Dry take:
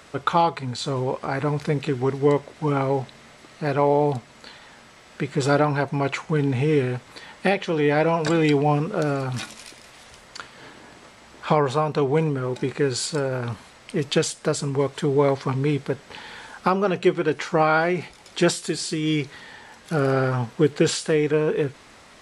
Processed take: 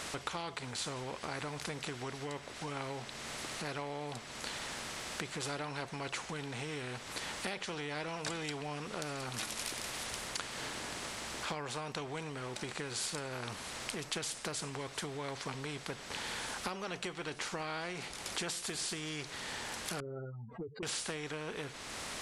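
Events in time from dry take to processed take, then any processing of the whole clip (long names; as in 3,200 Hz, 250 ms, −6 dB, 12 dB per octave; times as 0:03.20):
0:20.00–0:20.83: expanding power law on the bin magnitudes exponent 3.9
whole clip: downward compressor 2.5 to 1, threshold −41 dBFS; every bin compressed towards the loudest bin 2 to 1; level +4.5 dB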